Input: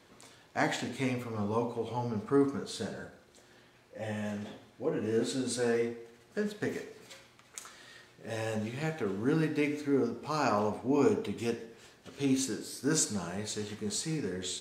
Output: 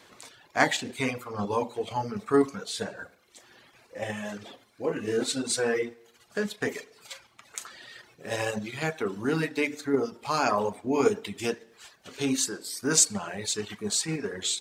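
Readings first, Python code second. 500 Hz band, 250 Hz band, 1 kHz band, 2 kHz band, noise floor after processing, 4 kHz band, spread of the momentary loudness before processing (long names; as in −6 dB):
+3.5 dB, +1.0 dB, +5.5 dB, +7.5 dB, −62 dBFS, +8.0 dB, 18 LU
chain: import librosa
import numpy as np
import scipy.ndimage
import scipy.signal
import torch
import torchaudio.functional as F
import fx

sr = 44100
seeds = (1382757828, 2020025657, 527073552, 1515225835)

p1 = fx.dereverb_blind(x, sr, rt60_s=0.9)
p2 = fx.low_shelf(p1, sr, hz=440.0, db=-8.5)
p3 = fx.level_steps(p2, sr, step_db=10)
p4 = p2 + F.gain(torch.from_numpy(p3), 2.0).numpy()
y = F.gain(torch.from_numpy(p4), 4.0).numpy()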